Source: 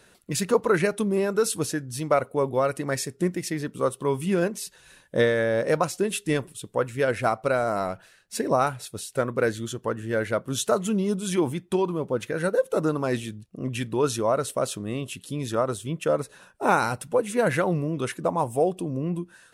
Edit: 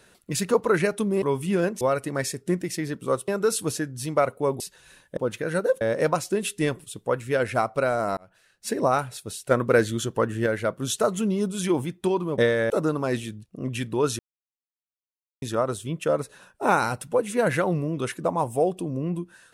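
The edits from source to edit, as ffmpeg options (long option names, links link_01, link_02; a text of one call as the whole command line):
ffmpeg -i in.wav -filter_complex "[0:a]asplit=14[link_01][link_02][link_03][link_04][link_05][link_06][link_07][link_08][link_09][link_10][link_11][link_12][link_13][link_14];[link_01]atrim=end=1.222[link_15];[link_02]atrim=start=4.008:end=4.602[link_16];[link_03]atrim=start=2.538:end=4.012[link_17];[link_04]atrim=start=1.218:end=2.542[link_18];[link_05]atrim=start=4.598:end=5.172[link_19];[link_06]atrim=start=12.058:end=12.702[link_20];[link_07]atrim=start=5.488:end=7.85,asetpts=PTS-STARTPTS,afade=type=out:start_time=2.358:duration=0.004:curve=hsin[link_21];[link_08]atrim=start=7.85:end=9.192,asetpts=PTS-STARTPTS,afade=type=in:duration=0.51[link_22];[link_09]atrim=start=9.188:end=10.142,asetpts=PTS-STARTPTS,volume=4.5dB[link_23];[link_10]atrim=start=10.138:end=12.062[link_24];[link_11]atrim=start=5.168:end=5.492[link_25];[link_12]atrim=start=12.698:end=14.19,asetpts=PTS-STARTPTS,afade=type=out:start_time=1.488:duration=0.004:curve=hsin[link_26];[link_13]atrim=start=14.19:end=15.42,asetpts=PTS-STARTPTS,volume=0[link_27];[link_14]atrim=start=15.42,asetpts=PTS-STARTPTS,afade=type=in:duration=0.004:curve=hsin[link_28];[link_15][link_16]acrossfade=duration=0.004:curve1=hsin:curve2=hsin[link_29];[link_29][link_17]acrossfade=duration=0.004:curve1=hsin:curve2=hsin[link_30];[link_30][link_18]acrossfade=duration=0.004:curve1=hsin:curve2=hsin[link_31];[link_31][link_19]acrossfade=duration=0.004:curve1=hsin:curve2=hsin[link_32];[link_32][link_20]acrossfade=duration=0.004:curve1=hsin:curve2=hsin[link_33];[link_21][link_22]concat=n=2:v=0:a=1[link_34];[link_33][link_34]acrossfade=duration=0.004:curve1=hsin:curve2=hsin[link_35];[link_35][link_23]acrossfade=duration=0.004:curve1=hsin:curve2=hsin[link_36];[link_36][link_24]acrossfade=duration=0.004:curve1=hsin:curve2=hsin[link_37];[link_37][link_25]acrossfade=duration=0.004:curve1=hsin:curve2=hsin[link_38];[link_26][link_27][link_28]concat=n=3:v=0:a=1[link_39];[link_38][link_39]acrossfade=duration=0.004:curve1=hsin:curve2=hsin" out.wav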